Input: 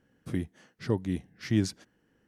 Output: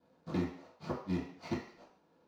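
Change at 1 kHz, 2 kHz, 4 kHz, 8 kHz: +2.5 dB, -6.5 dB, -10.0 dB, under -15 dB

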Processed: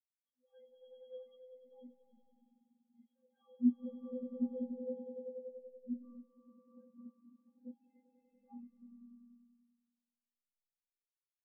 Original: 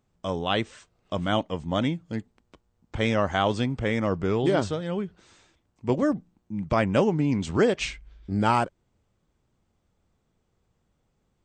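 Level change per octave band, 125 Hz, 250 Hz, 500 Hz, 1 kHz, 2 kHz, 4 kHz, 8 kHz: under -35 dB, -13.5 dB, -22.0 dB, under -40 dB, under -40 dB, under -40 dB, under -35 dB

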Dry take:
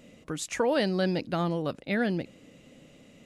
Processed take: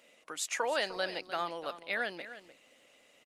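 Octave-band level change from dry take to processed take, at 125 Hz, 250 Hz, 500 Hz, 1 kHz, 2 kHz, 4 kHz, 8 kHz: -25.5 dB, -19.5 dB, -8.0 dB, -2.0 dB, -0.5 dB, -0.5 dB, 0.0 dB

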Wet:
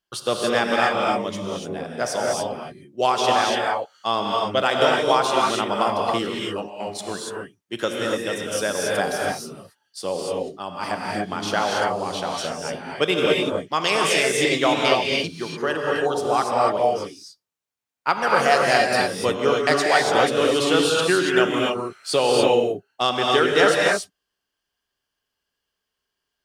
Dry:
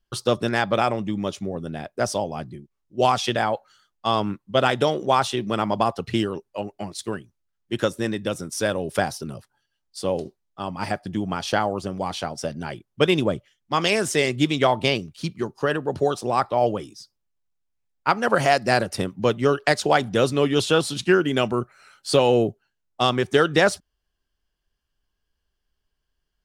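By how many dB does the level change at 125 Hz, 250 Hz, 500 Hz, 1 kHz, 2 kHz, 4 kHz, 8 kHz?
-6.0 dB, -1.5 dB, +2.0 dB, +3.0 dB, +4.0 dB, +4.0 dB, +4.0 dB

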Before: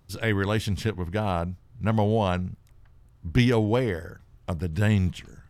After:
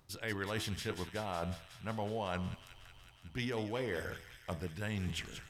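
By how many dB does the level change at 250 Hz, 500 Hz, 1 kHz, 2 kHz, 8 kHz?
-15.0 dB, -12.5 dB, -11.0 dB, -9.0 dB, -4.5 dB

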